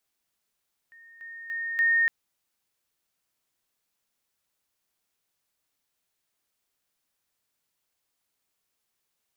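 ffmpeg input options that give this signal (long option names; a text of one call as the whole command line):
ffmpeg -f lavfi -i "aevalsrc='pow(10,(-49+10*floor(t/0.29))/20)*sin(2*PI*1840*t)':duration=1.16:sample_rate=44100" out.wav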